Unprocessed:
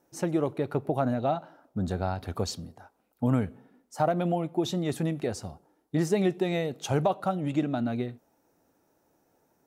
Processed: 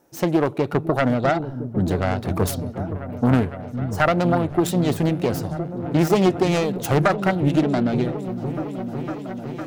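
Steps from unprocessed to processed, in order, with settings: self-modulated delay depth 0.36 ms; delay with an opening low-pass 506 ms, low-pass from 200 Hz, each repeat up 1 oct, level -6 dB; trim +8 dB

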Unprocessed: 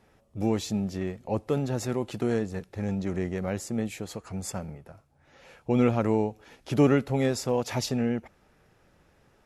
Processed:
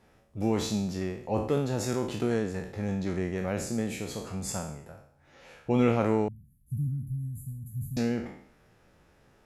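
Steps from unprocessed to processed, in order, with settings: spectral sustain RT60 0.62 s; 6.28–7.97 s: inverse Chebyshev band-stop 390–5600 Hz, stop band 50 dB; trim -1.5 dB

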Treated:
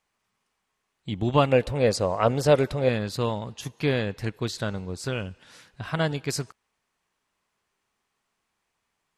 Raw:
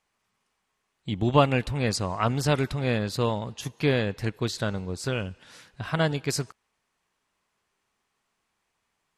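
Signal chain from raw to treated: 1.52–2.89 s: peaking EQ 530 Hz +12.5 dB 0.77 oct; trim -1 dB

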